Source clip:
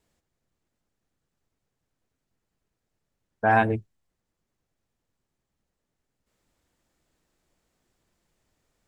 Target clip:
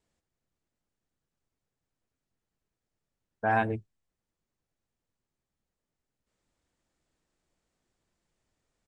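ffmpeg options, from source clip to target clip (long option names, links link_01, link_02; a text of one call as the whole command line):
ffmpeg -i in.wav -af "aresample=22050,aresample=44100,volume=-6dB" out.wav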